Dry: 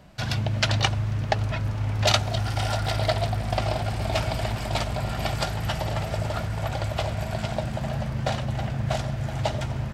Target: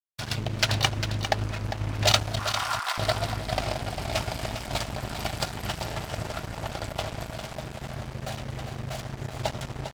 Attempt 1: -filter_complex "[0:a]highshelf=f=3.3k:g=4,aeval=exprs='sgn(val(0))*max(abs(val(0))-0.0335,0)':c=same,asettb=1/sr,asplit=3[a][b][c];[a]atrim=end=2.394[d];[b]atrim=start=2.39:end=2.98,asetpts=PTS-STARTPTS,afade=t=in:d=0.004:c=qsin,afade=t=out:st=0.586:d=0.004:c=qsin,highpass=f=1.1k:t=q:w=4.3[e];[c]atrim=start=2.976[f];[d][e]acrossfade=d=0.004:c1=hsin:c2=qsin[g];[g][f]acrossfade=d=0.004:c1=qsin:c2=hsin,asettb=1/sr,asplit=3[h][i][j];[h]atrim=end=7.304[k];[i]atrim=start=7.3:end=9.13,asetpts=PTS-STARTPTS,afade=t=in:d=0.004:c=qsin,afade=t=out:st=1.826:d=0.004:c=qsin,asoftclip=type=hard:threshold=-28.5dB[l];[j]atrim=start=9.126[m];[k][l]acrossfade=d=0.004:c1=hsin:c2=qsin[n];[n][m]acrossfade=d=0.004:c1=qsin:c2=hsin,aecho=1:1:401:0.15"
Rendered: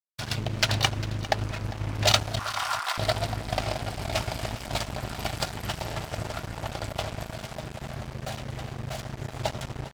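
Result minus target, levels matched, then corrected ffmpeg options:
echo-to-direct -7.5 dB
-filter_complex "[0:a]highshelf=f=3.3k:g=4,aeval=exprs='sgn(val(0))*max(abs(val(0))-0.0335,0)':c=same,asettb=1/sr,asplit=3[a][b][c];[a]atrim=end=2.394[d];[b]atrim=start=2.39:end=2.98,asetpts=PTS-STARTPTS,afade=t=in:d=0.004:c=qsin,afade=t=out:st=0.586:d=0.004:c=qsin,highpass=f=1.1k:t=q:w=4.3[e];[c]atrim=start=2.976[f];[d][e]acrossfade=d=0.004:c1=hsin:c2=qsin[g];[g][f]acrossfade=d=0.004:c1=qsin:c2=hsin,asettb=1/sr,asplit=3[h][i][j];[h]atrim=end=7.304[k];[i]atrim=start=7.3:end=9.13,asetpts=PTS-STARTPTS,afade=t=in:d=0.004:c=qsin,afade=t=out:st=1.826:d=0.004:c=qsin,asoftclip=type=hard:threshold=-28.5dB[l];[j]atrim=start=9.126[m];[k][l]acrossfade=d=0.004:c1=hsin:c2=qsin[n];[n][m]acrossfade=d=0.004:c1=qsin:c2=hsin,aecho=1:1:401:0.355"

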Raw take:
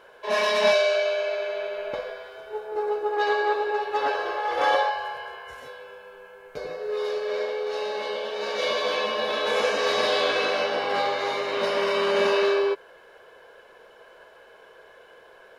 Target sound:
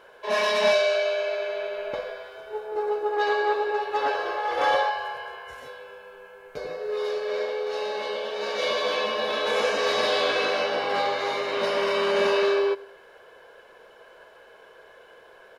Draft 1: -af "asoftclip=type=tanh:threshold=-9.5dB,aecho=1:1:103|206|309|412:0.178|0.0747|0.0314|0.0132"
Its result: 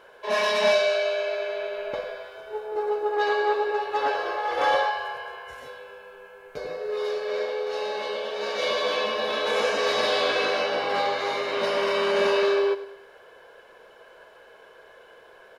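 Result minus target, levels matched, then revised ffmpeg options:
echo-to-direct +7.5 dB
-af "asoftclip=type=tanh:threshold=-9.5dB,aecho=1:1:103|206|309:0.075|0.0315|0.0132"

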